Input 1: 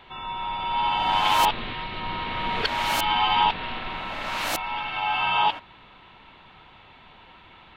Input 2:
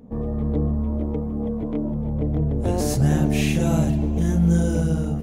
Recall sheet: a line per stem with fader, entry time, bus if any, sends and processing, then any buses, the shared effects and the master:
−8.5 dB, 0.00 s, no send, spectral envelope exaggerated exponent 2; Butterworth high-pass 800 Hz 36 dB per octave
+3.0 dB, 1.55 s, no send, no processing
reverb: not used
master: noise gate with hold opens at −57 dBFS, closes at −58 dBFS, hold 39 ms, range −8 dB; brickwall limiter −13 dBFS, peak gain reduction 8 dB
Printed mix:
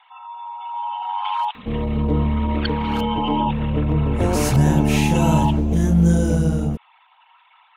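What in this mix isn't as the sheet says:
stem 1 −8.5 dB → −2.0 dB
master: missing brickwall limiter −13 dBFS, peak gain reduction 8 dB

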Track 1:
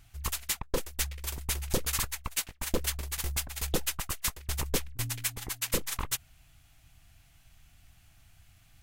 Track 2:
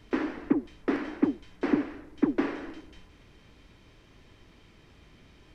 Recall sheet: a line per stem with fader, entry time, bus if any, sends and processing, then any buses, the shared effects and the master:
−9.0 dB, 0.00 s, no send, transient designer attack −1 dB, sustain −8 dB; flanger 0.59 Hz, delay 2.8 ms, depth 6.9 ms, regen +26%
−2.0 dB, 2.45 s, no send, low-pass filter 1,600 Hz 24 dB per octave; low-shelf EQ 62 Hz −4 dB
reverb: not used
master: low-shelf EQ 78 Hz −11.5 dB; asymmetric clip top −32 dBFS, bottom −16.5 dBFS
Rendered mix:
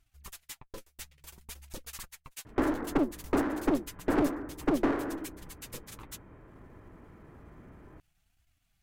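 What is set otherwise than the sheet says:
stem 2 −2.0 dB → +5.5 dB
master: missing low-shelf EQ 78 Hz −11.5 dB

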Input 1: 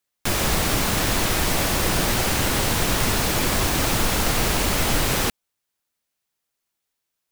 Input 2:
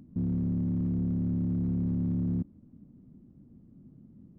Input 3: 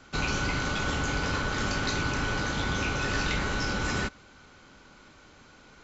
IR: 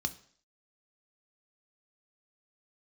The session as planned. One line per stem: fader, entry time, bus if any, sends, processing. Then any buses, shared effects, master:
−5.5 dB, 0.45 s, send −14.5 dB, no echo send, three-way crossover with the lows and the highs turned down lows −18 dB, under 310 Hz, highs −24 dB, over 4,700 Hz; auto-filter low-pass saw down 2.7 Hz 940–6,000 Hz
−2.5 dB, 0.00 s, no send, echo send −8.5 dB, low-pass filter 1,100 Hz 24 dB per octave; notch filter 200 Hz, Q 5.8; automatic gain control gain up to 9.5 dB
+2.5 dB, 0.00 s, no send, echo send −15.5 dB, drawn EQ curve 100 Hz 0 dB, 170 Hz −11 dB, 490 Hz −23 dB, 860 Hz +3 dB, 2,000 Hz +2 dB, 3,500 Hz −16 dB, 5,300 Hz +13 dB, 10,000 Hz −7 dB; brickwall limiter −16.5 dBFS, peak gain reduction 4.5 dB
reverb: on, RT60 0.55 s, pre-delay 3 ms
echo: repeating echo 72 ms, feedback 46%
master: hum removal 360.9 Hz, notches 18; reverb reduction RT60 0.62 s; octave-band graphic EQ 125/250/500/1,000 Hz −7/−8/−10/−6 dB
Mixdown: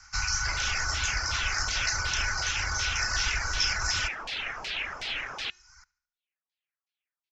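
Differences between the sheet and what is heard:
stem 1: entry 0.45 s → 0.20 s
stem 2: muted

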